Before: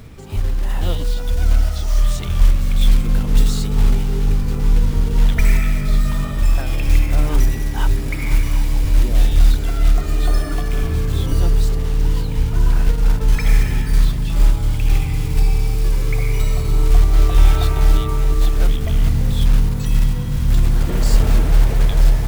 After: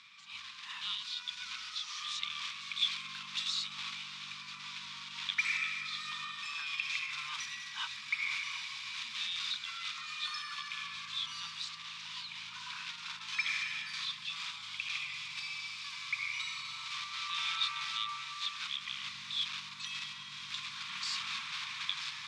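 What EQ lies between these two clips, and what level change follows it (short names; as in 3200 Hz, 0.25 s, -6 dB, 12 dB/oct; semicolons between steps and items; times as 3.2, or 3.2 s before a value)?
inverse Chebyshev band-stop 300–680 Hz, stop band 40 dB; speaker cabinet 190–5000 Hz, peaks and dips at 280 Hz +6 dB, 450 Hz +6 dB, 1100 Hz +10 dB, 2400 Hz +8 dB, 3600 Hz +7 dB; differentiator; 0.0 dB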